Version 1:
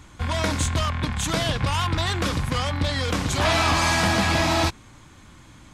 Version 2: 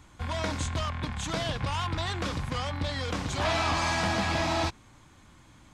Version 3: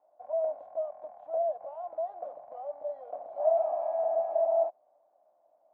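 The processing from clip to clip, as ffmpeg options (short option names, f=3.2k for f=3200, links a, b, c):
-filter_complex "[0:a]acrossover=split=8700[a][b];[b]acompressor=threshold=-56dB:ratio=4:attack=1:release=60[c];[a][c]amix=inputs=2:normalize=0,equalizer=f=770:w=1.5:g=2.5,volume=-7.5dB"
-af "asuperpass=centerf=650:order=4:qfactor=5.2,volume=8dB"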